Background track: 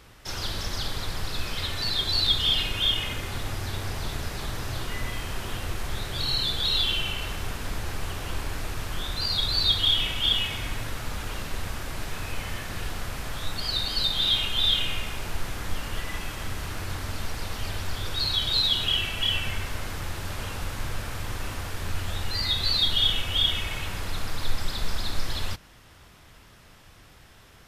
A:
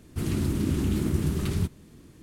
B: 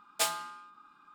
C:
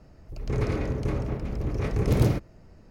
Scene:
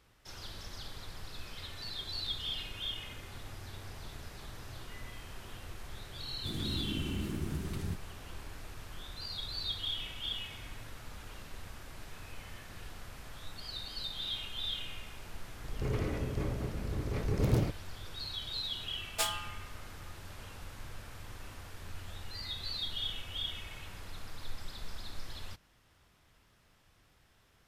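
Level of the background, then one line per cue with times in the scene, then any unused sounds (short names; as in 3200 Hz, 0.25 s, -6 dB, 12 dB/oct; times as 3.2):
background track -14.5 dB
6.28 add A -11 dB
15.32 add C -7 dB
18.99 add B -3.5 dB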